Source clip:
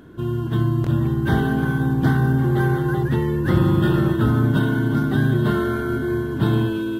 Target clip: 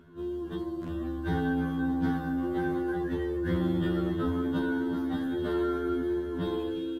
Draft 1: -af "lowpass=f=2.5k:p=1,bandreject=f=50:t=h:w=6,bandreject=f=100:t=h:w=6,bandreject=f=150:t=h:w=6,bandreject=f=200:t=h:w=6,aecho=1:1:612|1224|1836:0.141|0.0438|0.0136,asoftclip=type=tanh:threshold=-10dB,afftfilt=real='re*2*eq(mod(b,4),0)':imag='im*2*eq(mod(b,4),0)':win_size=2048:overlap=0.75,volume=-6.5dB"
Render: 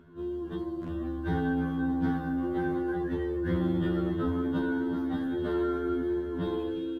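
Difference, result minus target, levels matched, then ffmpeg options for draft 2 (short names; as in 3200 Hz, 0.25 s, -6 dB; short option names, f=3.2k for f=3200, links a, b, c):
8000 Hz band -6.0 dB
-af "lowpass=f=6.1k:p=1,bandreject=f=50:t=h:w=6,bandreject=f=100:t=h:w=6,bandreject=f=150:t=h:w=6,bandreject=f=200:t=h:w=6,aecho=1:1:612|1224|1836:0.141|0.0438|0.0136,asoftclip=type=tanh:threshold=-10dB,afftfilt=real='re*2*eq(mod(b,4),0)':imag='im*2*eq(mod(b,4),0)':win_size=2048:overlap=0.75,volume=-6.5dB"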